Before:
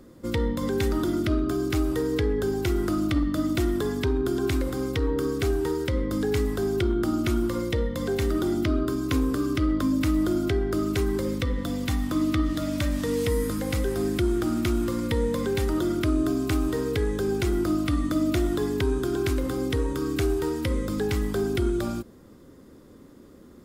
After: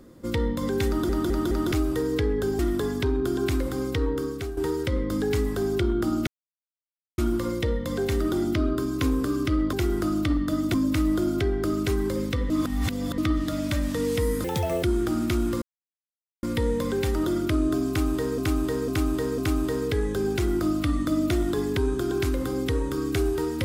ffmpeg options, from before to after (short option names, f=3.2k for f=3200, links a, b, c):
-filter_complex "[0:a]asplit=18[a][b][c][d][e][f][g][h][i][j][k][l][m][n][o][p][q][r];[a]atrim=end=1.092[s];[b]atrim=start=0.878:end=1.092[t];[c]atrim=start=0.878:end=1.092[u];[d]atrim=start=0.878:end=1.092[v];[e]atrim=start=1.718:end=2.592[w];[f]atrim=start=3.598:end=5.58,asetpts=PTS-STARTPTS,afade=t=out:st=1.462:d=0.52:silence=0.266073[x];[g]atrim=start=5.58:end=7.28,asetpts=PTS-STARTPTS,afade=t=in:d=0.004:c=hsin:silence=0.266073,afade=t=out:st=1.696:d=0.004:c=hsin,apad=pad_dur=0.91[y];[h]atrim=start=7.28:end=9.832,asetpts=PTS-STARTPTS,afade=t=in:d=0.004:c=hsin[z];[i]atrim=start=2.588:end=3.602[aa];[j]atrim=start=9.828:end=11.592[ab];[k]atrim=start=11.588:end=12.272,asetpts=PTS-STARTPTS,areverse[ac];[l]atrim=start=12.268:end=13.534[ad];[m]atrim=start=13.53:end=14.18,asetpts=PTS-STARTPTS,asetrate=73647,aresample=44100[ae];[n]atrim=start=14.176:end=14.97,asetpts=PTS-STARTPTS,afade=t=out:st=0.79:d=0.004:c=hsin,apad=pad_dur=0.81[af];[o]atrim=start=14.97:end=16.922,asetpts=PTS-STARTPTS,afade=t=in:d=0.004:c=hsin[ag];[p]atrim=start=16.418:end=16.922[ah];[q]atrim=start=16.418:end=16.922[ai];[r]atrim=start=16.418[aj];[s][t]acrossfade=d=0.004:c1=hsin:c2=hsin[ak];[ak][u]acrossfade=d=0.004:c1=hsin:c2=hsin[al];[al][v]acrossfade=d=0.004:c1=hsin:c2=hsin[am];[am][w]acrossfade=d=0.004:c1=hsin:c2=hsin[an];[x][y][z]concat=n=3:v=0:a=1[ao];[an][ao]acrossfade=d=0.004:c1=hsin:c2=hsin[ap];[ap][aa]acrossfade=d=0.004:c1=hsin:c2=hsin[aq];[aq][ab]acrossfade=d=0.004:c1=hsin:c2=hsin[ar];[ar][ac]acrossfade=d=0.004:c1=hsin:c2=hsin[as];[as][ad]acrossfade=d=0.004:c1=hsin:c2=hsin[at];[at][ae]acrossfade=d=0.004:c1=hsin:c2=hsin[au];[af][ag]concat=n=2:v=0:a=1[av];[au][av]acrossfade=d=0.004:c1=hsin:c2=hsin[aw];[aw][ah]acrossfade=d=0.004:c1=hsin:c2=hsin[ax];[ax][ai]acrossfade=d=0.004:c1=hsin:c2=hsin[ay];[ay][aj]acrossfade=d=0.004:c1=hsin:c2=hsin"